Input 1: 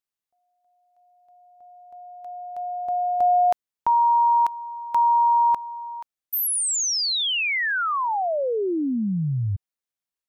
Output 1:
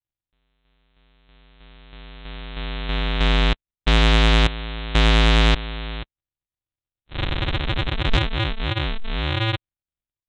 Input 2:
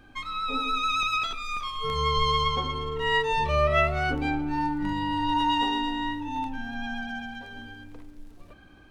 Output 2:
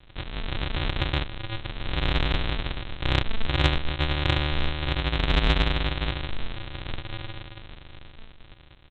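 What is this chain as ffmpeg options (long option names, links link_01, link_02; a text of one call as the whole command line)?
ffmpeg -i in.wav -af "equalizer=frequency=860:width=7.6:gain=11.5,aresample=8000,acrusher=samples=36:mix=1:aa=0.000001,aresample=44100,acontrast=73,crystalizer=i=9:c=0,volume=-7dB" out.wav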